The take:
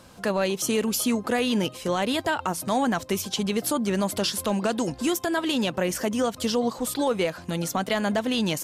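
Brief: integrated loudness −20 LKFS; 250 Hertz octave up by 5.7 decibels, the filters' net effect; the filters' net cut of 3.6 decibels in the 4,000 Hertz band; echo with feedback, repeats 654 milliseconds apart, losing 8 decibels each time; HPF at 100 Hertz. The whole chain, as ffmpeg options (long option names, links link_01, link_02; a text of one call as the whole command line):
ffmpeg -i in.wav -af "highpass=100,equalizer=frequency=250:width_type=o:gain=7,equalizer=frequency=4000:width_type=o:gain=-5,aecho=1:1:654|1308|1962|2616|3270:0.398|0.159|0.0637|0.0255|0.0102,volume=2dB" out.wav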